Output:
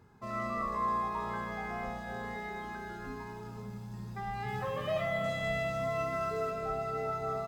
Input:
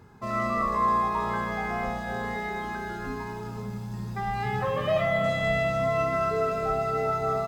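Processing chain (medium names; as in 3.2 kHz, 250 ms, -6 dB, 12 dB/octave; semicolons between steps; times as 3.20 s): 4.48–6.51 s: treble shelf 4.6 kHz +5.5 dB; trim -8 dB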